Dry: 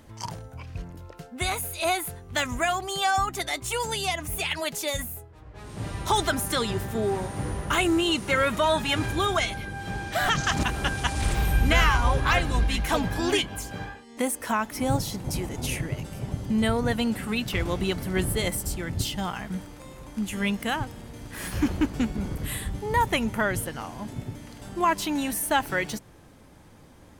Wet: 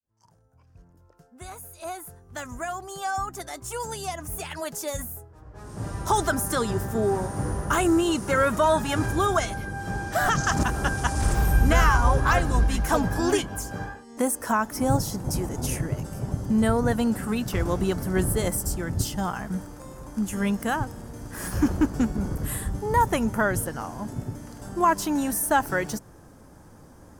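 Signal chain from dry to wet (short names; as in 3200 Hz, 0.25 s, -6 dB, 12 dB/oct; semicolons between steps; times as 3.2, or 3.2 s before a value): opening faded in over 7.06 s; band shelf 2900 Hz -10 dB 1.3 oct; gain +2.5 dB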